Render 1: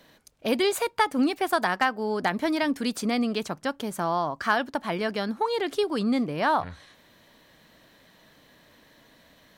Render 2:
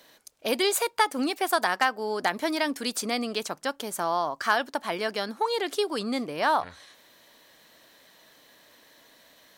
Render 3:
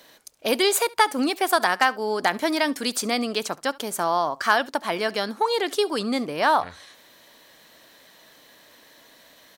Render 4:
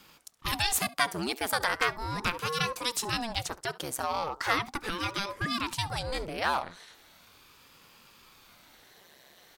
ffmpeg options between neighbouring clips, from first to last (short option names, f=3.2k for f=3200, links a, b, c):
-af "bass=f=250:g=-12,treble=f=4k:g=6"
-af "aecho=1:1:70:0.0708,volume=4dB"
-filter_complex "[0:a]acrossover=split=1200[a][b];[a]asoftclip=type=tanh:threshold=-26.5dB[c];[c][b]amix=inputs=2:normalize=0,aeval=exprs='val(0)*sin(2*PI*430*n/s+430*0.85/0.38*sin(2*PI*0.38*n/s))':c=same,volume=-1.5dB"